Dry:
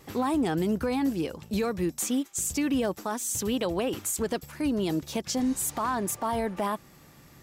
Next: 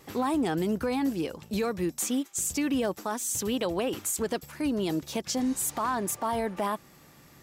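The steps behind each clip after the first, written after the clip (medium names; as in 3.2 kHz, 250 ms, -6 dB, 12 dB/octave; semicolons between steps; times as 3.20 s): bass shelf 140 Hz -5.5 dB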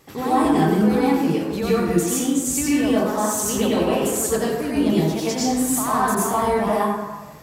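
plate-style reverb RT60 1.2 s, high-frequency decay 0.5×, pre-delay 80 ms, DRR -8.5 dB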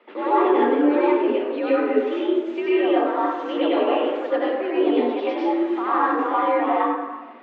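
mistuned SSB +83 Hz 180–3100 Hz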